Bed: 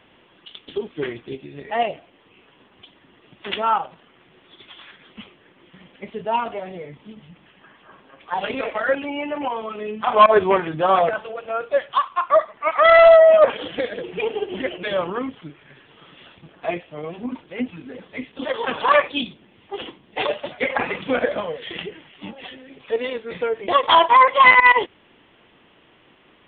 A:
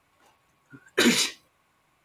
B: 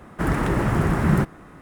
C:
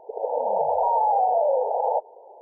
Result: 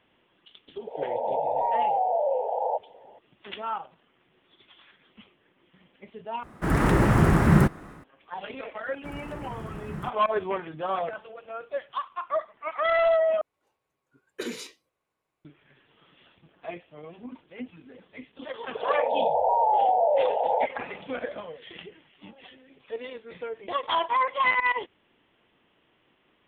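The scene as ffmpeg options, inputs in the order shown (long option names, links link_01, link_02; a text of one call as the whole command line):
ffmpeg -i bed.wav -i cue0.wav -i cue1.wav -i cue2.wav -filter_complex "[3:a]asplit=2[link_01][link_02];[2:a]asplit=2[link_03][link_04];[0:a]volume=-12dB[link_05];[link_03]dynaudnorm=framelen=210:gausssize=3:maxgain=8.5dB[link_06];[1:a]equalizer=frequency=450:width=1.6:gain=9.5[link_07];[link_05]asplit=3[link_08][link_09][link_10];[link_08]atrim=end=6.434[link_11];[link_06]atrim=end=1.61,asetpts=PTS-STARTPTS,volume=-5dB[link_12];[link_09]atrim=start=8.036:end=13.414[link_13];[link_07]atrim=end=2.04,asetpts=PTS-STARTPTS,volume=-17dB[link_14];[link_10]atrim=start=15.446[link_15];[link_01]atrim=end=2.41,asetpts=PTS-STARTPTS,volume=-4dB,afade=type=in:duration=0.004:curve=hsin,afade=type=out:start_time=2.406:duration=0.004:curve=hsin,adelay=780[link_16];[link_04]atrim=end=1.61,asetpts=PTS-STARTPTS,volume=-18dB,afade=type=in:duration=0.004:curve=hsin,afade=type=out:start_time=1.606:duration=0.004:curve=hsin,adelay=8850[link_17];[link_02]atrim=end=2.41,asetpts=PTS-STARTPTS,volume=-1dB,afade=type=in:duration=0.004:curve=hsin,afade=type=out:start_time=2.406:duration=0.004:curve=hsin,adelay=18660[link_18];[link_11][link_12]acrossfade=duration=0.004:curve1=hsin:curve2=hsin[link_19];[link_19][link_13]acrossfade=duration=0.004:curve1=hsin:curve2=hsin[link_20];[link_20][link_14]acrossfade=duration=0.004:curve1=hsin:curve2=hsin[link_21];[link_21][link_15]acrossfade=duration=0.004:curve1=hsin:curve2=hsin[link_22];[link_22][link_16][link_17][link_18]amix=inputs=4:normalize=0" out.wav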